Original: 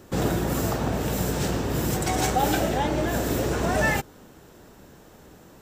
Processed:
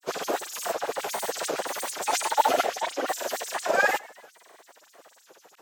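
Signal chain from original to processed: thinning echo 0.133 s, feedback 59%, level -23.5 dB; LFO high-pass sine 9.8 Hz 530–7200 Hz; grains, pitch spread up and down by 3 st

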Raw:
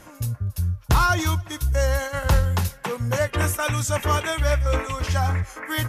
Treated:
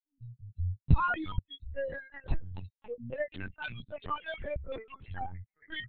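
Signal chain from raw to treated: per-bin expansion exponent 3; 0.49–0.94 low shelf 310 Hz +10.5 dB; LPC vocoder at 8 kHz pitch kept; gain -6.5 dB

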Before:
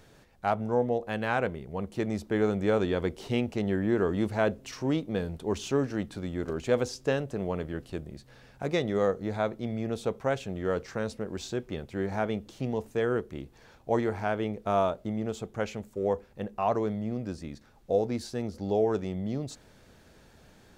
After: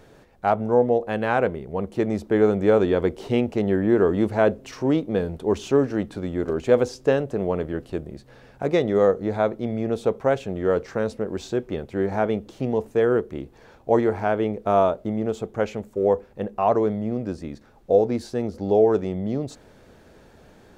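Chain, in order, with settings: EQ curve 150 Hz 0 dB, 430 Hz +5 dB, 4900 Hz -4 dB; gain +4 dB

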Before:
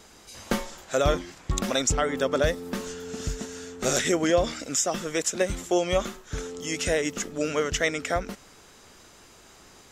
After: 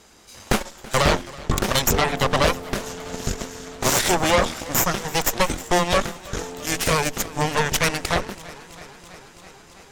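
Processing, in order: added harmonics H 8 -7 dB, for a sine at -8.5 dBFS; warbling echo 0.328 s, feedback 76%, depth 64 cents, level -20 dB

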